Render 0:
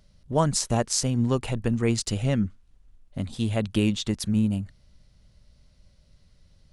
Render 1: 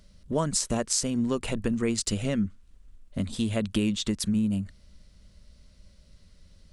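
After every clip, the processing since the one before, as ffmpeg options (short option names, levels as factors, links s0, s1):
-af "equalizer=f=125:t=o:w=0.33:g=-12,equalizer=f=200:t=o:w=0.33:g=3,equalizer=f=800:t=o:w=0.33:g=-7,equalizer=f=8000:t=o:w=0.33:g=4,acompressor=threshold=0.0355:ratio=2.5,volume=1.5"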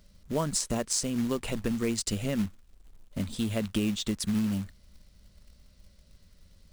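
-af "acrusher=bits=4:mode=log:mix=0:aa=0.000001,volume=0.75"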